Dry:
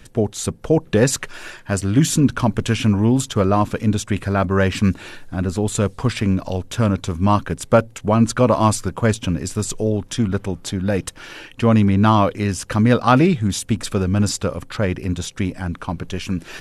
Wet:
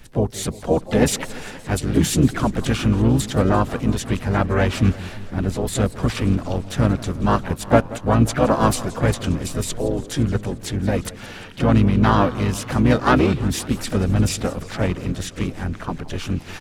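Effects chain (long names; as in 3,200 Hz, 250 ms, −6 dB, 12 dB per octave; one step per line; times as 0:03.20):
pitch-shifted copies added −12 semitones −5 dB, +3 semitones −6 dB, +7 semitones −11 dB
feedback echo with a swinging delay time 174 ms, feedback 70%, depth 215 cents, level −18 dB
level −3.5 dB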